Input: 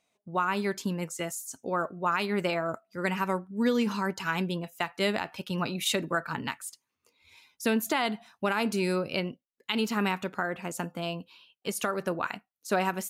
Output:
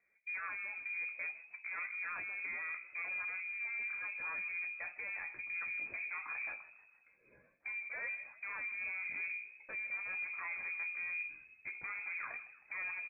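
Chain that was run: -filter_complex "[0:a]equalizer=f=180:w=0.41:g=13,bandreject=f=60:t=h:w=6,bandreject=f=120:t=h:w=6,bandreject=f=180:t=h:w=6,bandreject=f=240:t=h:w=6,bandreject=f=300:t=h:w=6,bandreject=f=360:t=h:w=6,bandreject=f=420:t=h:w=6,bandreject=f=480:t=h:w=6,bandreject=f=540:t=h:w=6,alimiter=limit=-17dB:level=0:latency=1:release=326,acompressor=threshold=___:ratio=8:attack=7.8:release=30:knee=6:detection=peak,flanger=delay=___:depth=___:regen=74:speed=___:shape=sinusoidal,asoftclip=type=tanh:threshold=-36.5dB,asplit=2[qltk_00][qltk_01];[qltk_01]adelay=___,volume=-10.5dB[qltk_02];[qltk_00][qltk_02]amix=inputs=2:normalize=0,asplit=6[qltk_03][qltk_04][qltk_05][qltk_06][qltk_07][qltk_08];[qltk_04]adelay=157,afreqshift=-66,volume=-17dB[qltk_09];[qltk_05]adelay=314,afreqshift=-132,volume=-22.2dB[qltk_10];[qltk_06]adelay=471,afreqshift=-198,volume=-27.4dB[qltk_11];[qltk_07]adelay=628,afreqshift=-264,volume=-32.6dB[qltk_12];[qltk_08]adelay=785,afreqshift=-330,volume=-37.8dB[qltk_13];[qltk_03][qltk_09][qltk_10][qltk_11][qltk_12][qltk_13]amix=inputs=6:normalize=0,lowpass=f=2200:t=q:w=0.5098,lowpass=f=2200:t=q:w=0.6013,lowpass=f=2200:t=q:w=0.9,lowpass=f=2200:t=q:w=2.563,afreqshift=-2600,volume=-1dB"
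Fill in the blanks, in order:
-32dB, 4.2, 3.6, 1, 17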